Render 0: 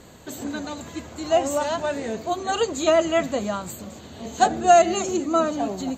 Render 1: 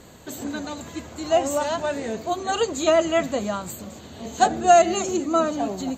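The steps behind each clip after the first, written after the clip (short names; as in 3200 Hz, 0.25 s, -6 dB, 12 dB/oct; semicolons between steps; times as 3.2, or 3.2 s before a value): high shelf 11000 Hz +3 dB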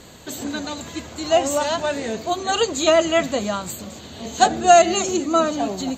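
bell 4000 Hz +5.5 dB 1.8 oct; gain +2 dB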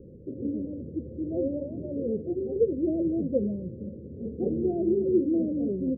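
rippled Chebyshev low-pass 540 Hz, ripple 3 dB; gain +1 dB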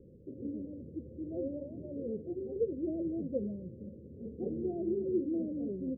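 gain -8.5 dB; Vorbis 96 kbps 48000 Hz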